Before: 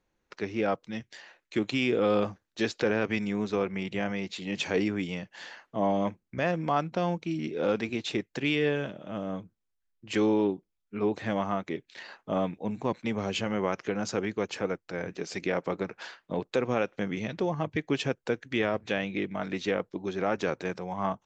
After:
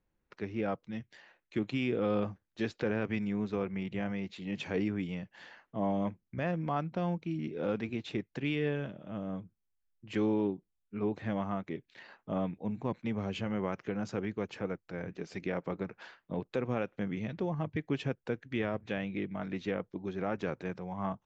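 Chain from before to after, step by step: tone controls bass +7 dB, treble -9 dB; gain -7 dB

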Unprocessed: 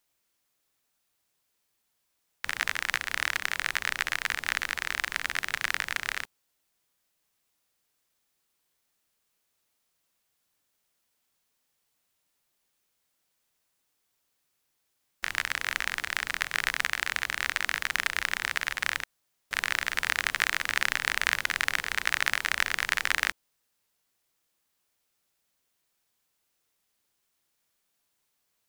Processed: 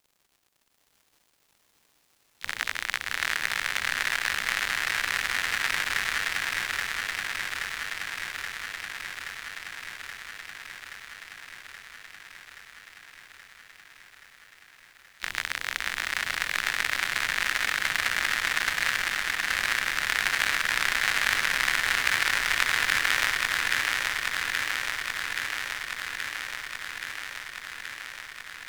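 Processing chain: crackle 150/s -49 dBFS; harmoniser +3 st -16 dB, +12 st -15 dB; swung echo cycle 0.826 s, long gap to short 3:1, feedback 75%, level -3 dB; gain -1 dB

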